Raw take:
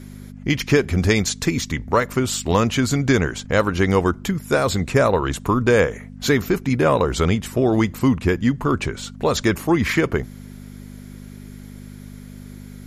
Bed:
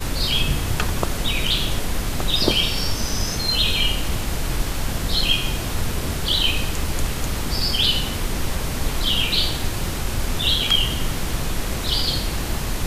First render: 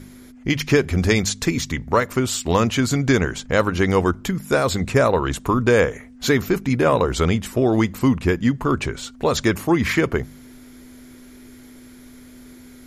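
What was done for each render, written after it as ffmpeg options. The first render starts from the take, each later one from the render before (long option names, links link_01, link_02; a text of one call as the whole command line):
ffmpeg -i in.wav -af "bandreject=frequency=50:width_type=h:width=4,bandreject=frequency=100:width_type=h:width=4,bandreject=frequency=150:width_type=h:width=4,bandreject=frequency=200:width_type=h:width=4" out.wav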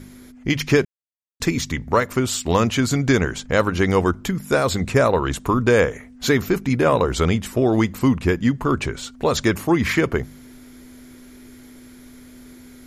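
ffmpeg -i in.wav -filter_complex "[0:a]asplit=3[link_01][link_02][link_03];[link_01]atrim=end=0.85,asetpts=PTS-STARTPTS,afade=type=out:start_time=0.846:duration=0.004:curve=hsin[link_04];[link_02]atrim=start=0.85:end=1.4,asetpts=PTS-STARTPTS,volume=0[link_05];[link_03]atrim=start=1.4,asetpts=PTS-STARTPTS,afade=type=in:duration=0.004:curve=hsin[link_06];[link_04][link_05][link_06]concat=n=3:v=0:a=1" out.wav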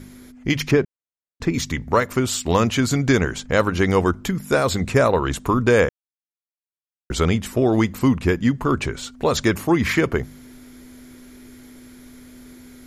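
ffmpeg -i in.wav -filter_complex "[0:a]asettb=1/sr,asplit=3[link_01][link_02][link_03];[link_01]atrim=end=0.714[link_04];[link_02]atrim=start=0.71:end=1.54,asetpts=PTS-STARTPTS,afade=type=in:duration=0.004:curve=qsin,afade=type=out:start_time=0.826:duration=0.004:curve=qsin,lowpass=frequency=1300:poles=1[link_05];[link_03]atrim=start=1.536[link_06];[link_04][link_05]acrossfade=duration=0.004:curve1=hsin:curve2=qsin[link_07];[link_07][link_06]acrossfade=duration=0.004:curve1=qsin:curve2=hsin,asplit=3[link_08][link_09][link_10];[link_08]atrim=end=5.89,asetpts=PTS-STARTPTS,afade=type=out:start_time=5.886:duration=0.004:curve=hsin[link_11];[link_09]atrim=start=5.89:end=7.1,asetpts=PTS-STARTPTS,volume=0[link_12];[link_10]atrim=start=7.1,asetpts=PTS-STARTPTS,afade=type=in:duration=0.004:curve=hsin[link_13];[link_11][link_12][link_13]concat=n=3:v=0:a=1" out.wav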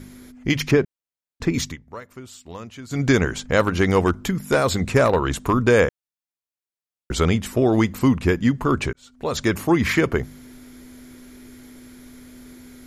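ffmpeg -i in.wav -filter_complex "[0:a]asettb=1/sr,asplit=3[link_01][link_02][link_03];[link_01]atrim=end=3.604[link_04];[link_02]atrim=start=3.6:end=5.53,asetpts=PTS-STARTPTS,afade=type=in:duration=0.004:curve=qsin,afade=type=out:start_time=1.926:duration=0.004:curve=qsin,aeval=exprs='clip(val(0),-1,0.251)':channel_layout=same[link_05];[link_03]atrim=start=5.526[link_06];[link_04][link_05]acrossfade=duration=0.004:curve1=hsin:curve2=qsin[link_07];[link_07][link_06]acrossfade=duration=0.004:curve1=qsin:curve2=hsin,asplit=4[link_08][link_09][link_10][link_11];[link_08]atrim=end=1.77,asetpts=PTS-STARTPTS,afade=type=out:start_time=1.64:duration=0.13:silence=0.11885[link_12];[link_09]atrim=start=1.77:end=2.89,asetpts=PTS-STARTPTS,volume=-18.5dB[link_13];[link_10]atrim=start=2.89:end=8.93,asetpts=PTS-STARTPTS,afade=type=in:duration=0.13:silence=0.11885,afade=type=out:start_time=6.036:duration=0.004:curve=hsin[link_14];[link_11]atrim=start=8.93,asetpts=PTS-STARTPTS,afade=type=in:duration=0.68[link_15];[link_12][link_13][link_14][link_15]concat=n=4:v=0:a=1" out.wav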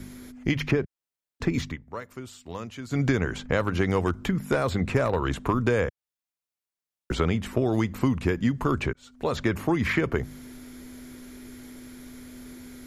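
ffmpeg -i in.wav -filter_complex "[0:a]acrossover=split=110|3200[link_01][link_02][link_03];[link_01]acompressor=threshold=-31dB:ratio=4[link_04];[link_02]acompressor=threshold=-22dB:ratio=4[link_05];[link_03]acompressor=threshold=-48dB:ratio=4[link_06];[link_04][link_05][link_06]amix=inputs=3:normalize=0" out.wav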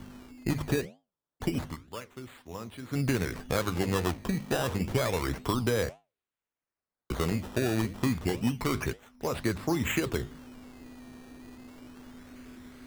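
ffmpeg -i in.wav -af "acrusher=samples=14:mix=1:aa=0.000001:lfo=1:lforange=14:lforate=0.29,flanger=delay=9.1:depth=9.3:regen=-77:speed=2:shape=sinusoidal" out.wav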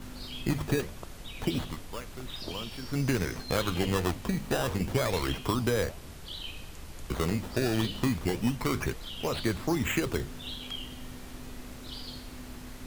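ffmpeg -i in.wav -i bed.wav -filter_complex "[1:a]volume=-20.5dB[link_01];[0:a][link_01]amix=inputs=2:normalize=0" out.wav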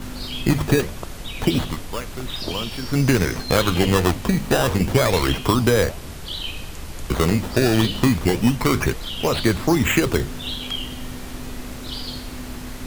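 ffmpeg -i in.wav -af "volume=10.5dB" out.wav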